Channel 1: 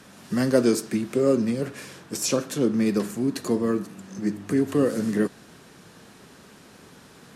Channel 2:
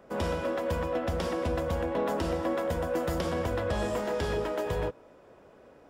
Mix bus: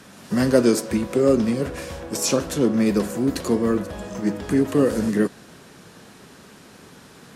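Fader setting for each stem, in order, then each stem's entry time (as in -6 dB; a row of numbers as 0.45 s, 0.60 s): +3.0 dB, -5.0 dB; 0.00 s, 0.20 s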